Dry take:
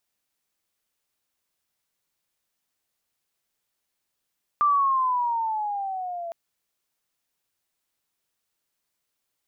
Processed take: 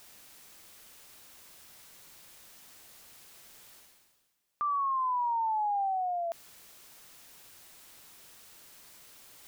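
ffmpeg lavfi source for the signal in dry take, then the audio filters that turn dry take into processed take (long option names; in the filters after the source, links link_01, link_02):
-f lavfi -i "aevalsrc='pow(10,(-16.5-14*t/1.71)/20)*sin(2*PI*1190*1.71/(-10*log(2)/12)*(exp(-10*log(2)/12*t/1.71)-1))':duration=1.71:sample_rate=44100"
-af "areverse,acompressor=mode=upward:threshold=-33dB:ratio=2.5,areverse,alimiter=level_in=2.5dB:limit=-24dB:level=0:latency=1:release=20,volume=-2.5dB"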